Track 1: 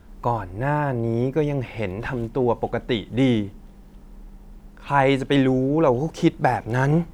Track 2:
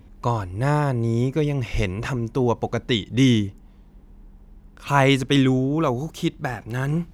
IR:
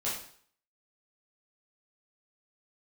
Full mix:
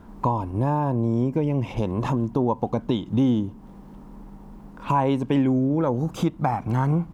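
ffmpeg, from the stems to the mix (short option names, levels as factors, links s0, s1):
-filter_complex "[0:a]volume=0.668,asplit=2[s0][s1];[1:a]acompressor=threshold=0.0447:ratio=6,adelay=0.5,volume=1.26[s2];[s1]apad=whole_len=314871[s3];[s2][s3]sidechaingate=range=0.0224:threshold=0.0141:ratio=16:detection=peak[s4];[s0][s4]amix=inputs=2:normalize=0,equalizer=f=125:t=o:w=1:g=6,equalizer=f=250:t=o:w=1:g=10,equalizer=f=500:t=o:w=1:g=3,equalizer=f=1000:t=o:w=1:g=12,acompressor=threshold=0.0447:ratio=2"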